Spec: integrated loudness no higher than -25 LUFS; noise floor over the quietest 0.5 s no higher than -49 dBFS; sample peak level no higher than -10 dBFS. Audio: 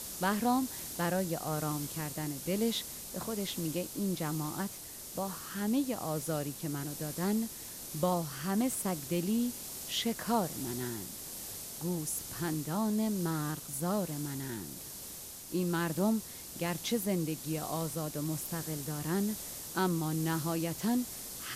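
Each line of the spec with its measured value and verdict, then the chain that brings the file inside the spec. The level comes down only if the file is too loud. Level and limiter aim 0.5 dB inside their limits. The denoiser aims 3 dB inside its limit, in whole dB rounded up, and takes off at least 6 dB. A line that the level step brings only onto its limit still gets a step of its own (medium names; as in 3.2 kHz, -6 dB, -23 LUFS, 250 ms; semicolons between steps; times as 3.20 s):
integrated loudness -34.5 LUFS: pass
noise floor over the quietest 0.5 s -46 dBFS: fail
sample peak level -16.5 dBFS: pass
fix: noise reduction 6 dB, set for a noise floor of -46 dBFS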